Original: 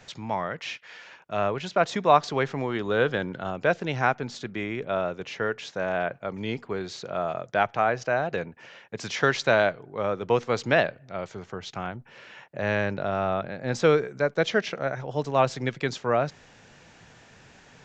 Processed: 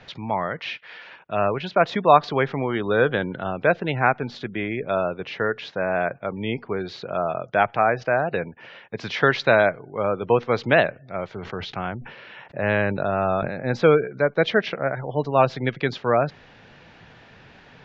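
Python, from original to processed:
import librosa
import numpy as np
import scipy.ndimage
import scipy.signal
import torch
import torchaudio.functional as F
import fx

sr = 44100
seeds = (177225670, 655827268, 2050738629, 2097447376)

y = fx.spec_gate(x, sr, threshold_db=-30, keep='strong')
y = scipy.signal.sosfilt(scipy.signal.butter(4, 4300.0, 'lowpass', fs=sr, output='sos'), y)
y = fx.sustainer(y, sr, db_per_s=62.0, at=(11.28, 13.68))
y = F.gain(torch.from_numpy(y), 4.0).numpy()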